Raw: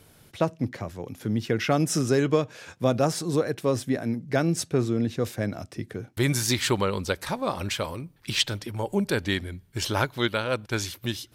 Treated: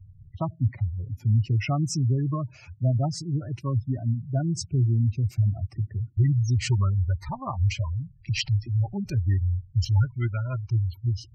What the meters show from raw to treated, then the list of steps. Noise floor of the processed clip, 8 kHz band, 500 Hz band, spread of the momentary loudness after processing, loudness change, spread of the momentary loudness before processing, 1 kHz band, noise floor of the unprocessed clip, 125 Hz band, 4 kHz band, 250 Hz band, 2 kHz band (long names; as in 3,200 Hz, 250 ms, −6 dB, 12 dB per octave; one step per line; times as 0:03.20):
−53 dBFS, −7.5 dB, −13.0 dB, 7 LU, +0.5 dB, 9 LU, −6.5 dB, −58 dBFS, +8.0 dB, −8.0 dB, −5.0 dB, −9.5 dB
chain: low shelf with overshoot 140 Hz +11 dB, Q 1.5
gate on every frequency bin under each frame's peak −15 dB strong
phaser with its sweep stopped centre 2,400 Hz, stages 8